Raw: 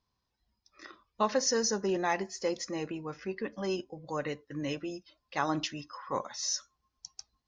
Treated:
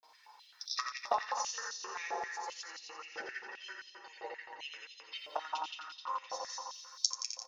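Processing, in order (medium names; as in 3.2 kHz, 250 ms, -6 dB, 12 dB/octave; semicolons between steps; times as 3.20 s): comb 2.2 ms, depth 46%; in parallel at -3 dB: compression, threshold -44 dBFS, peak gain reduction 20.5 dB; on the sum: granulator, pitch spread up and down by 0 st; inverted gate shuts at -37 dBFS, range -26 dB; flange 0.37 Hz, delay 6.3 ms, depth 2.6 ms, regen +35%; bucket-brigade echo 86 ms, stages 4096, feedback 83%, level -6 dB; on a send at -9 dB: reverberation RT60 0.80 s, pre-delay 4 ms; on the sum: step-sequenced high-pass 7.6 Hz 700–3800 Hz; trim +18 dB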